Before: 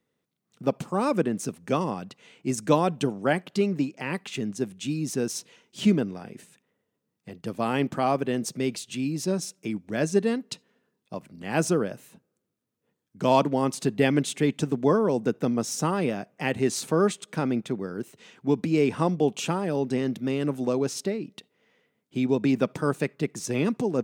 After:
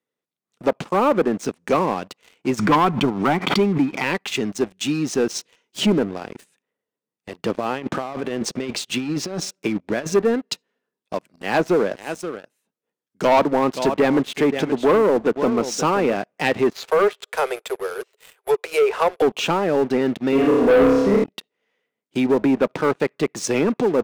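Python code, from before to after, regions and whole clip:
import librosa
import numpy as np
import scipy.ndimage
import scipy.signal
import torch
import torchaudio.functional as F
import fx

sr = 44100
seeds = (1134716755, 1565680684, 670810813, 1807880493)

y = fx.chain(x, sr, fx.comb(ms=0.9, depth=0.68),
    fx.clip_hard(threshold_db=-11.5),
    fx.pre_swell(db_per_s=79.0), at=(2.59, 4.04))
y = fx.chain(y, sr, fx.lowpass(hz=3400.0, slope=6),
    fx.over_compress(threshold_db=-30.0, ratio=-0.5), at=(7.38, 10.13))
y = fx.chain(y, sr, fx.highpass(hz=110.0, slope=6),
    fx.echo_single(ms=526, db=-13.5), at=(11.28, 16.17))
y = fx.chain(y, sr, fx.resample_bad(factor=4, down='filtered', up='hold'),
    fx.steep_highpass(hz=390.0, slope=96), at=(16.73, 19.22))
y = fx.chain(y, sr, fx.comb(ms=4.3, depth=0.88),
    fx.room_flutter(wall_m=5.1, rt60_s=1.1), at=(20.32, 21.24))
y = fx.env_lowpass_down(y, sr, base_hz=1600.0, full_db=-19.5)
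y = fx.bass_treble(y, sr, bass_db=-11, treble_db=-1)
y = fx.leveller(y, sr, passes=3)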